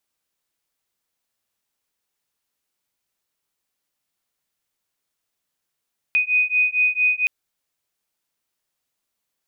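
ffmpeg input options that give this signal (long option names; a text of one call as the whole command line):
ffmpeg -f lavfi -i "aevalsrc='0.106*(sin(2*PI*2490*t)+sin(2*PI*2494.4*t))':duration=1.12:sample_rate=44100" out.wav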